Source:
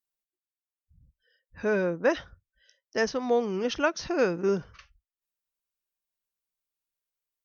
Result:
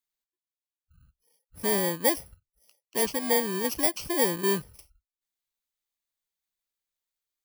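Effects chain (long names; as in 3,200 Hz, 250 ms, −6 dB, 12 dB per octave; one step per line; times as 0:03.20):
samples in bit-reversed order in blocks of 32 samples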